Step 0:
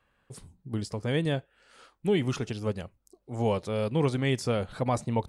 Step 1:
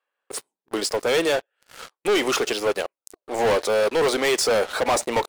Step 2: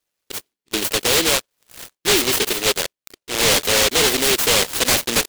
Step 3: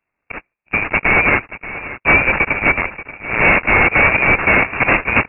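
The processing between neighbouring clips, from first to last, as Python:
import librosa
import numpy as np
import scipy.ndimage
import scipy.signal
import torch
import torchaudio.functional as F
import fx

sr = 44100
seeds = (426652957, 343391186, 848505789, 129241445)

y1 = scipy.signal.sosfilt(scipy.signal.butter(4, 400.0, 'highpass', fs=sr, output='sos'), x)
y1 = fx.leveller(y1, sr, passes=5)
y2 = fx.noise_mod_delay(y1, sr, seeds[0], noise_hz=3100.0, depth_ms=0.39)
y2 = y2 * 10.0 ** (3.5 / 20.0)
y3 = fx.freq_invert(y2, sr, carrier_hz=2700)
y3 = y3 + 10.0 ** (-15.0 / 20.0) * np.pad(y3, (int(582 * sr / 1000.0), 0))[:len(y3)]
y3 = y3 * 10.0 ** (7.5 / 20.0)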